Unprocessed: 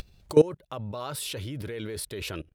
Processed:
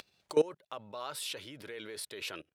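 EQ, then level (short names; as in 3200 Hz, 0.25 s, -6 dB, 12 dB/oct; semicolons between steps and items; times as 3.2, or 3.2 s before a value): weighting filter A; -4.0 dB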